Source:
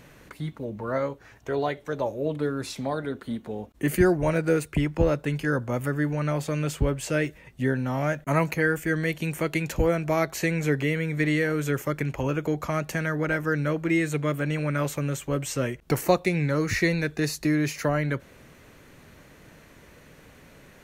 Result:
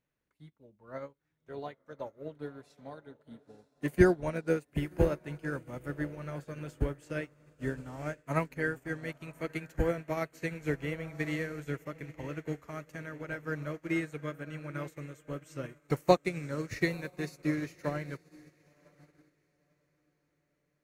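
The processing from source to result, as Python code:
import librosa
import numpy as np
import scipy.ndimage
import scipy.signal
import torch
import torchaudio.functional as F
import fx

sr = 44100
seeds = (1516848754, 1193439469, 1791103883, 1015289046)

y = fx.echo_diffused(x, sr, ms=1005, feedback_pct=52, wet_db=-10.0)
y = fx.upward_expand(y, sr, threshold_db=-39.0, expansion=2.5)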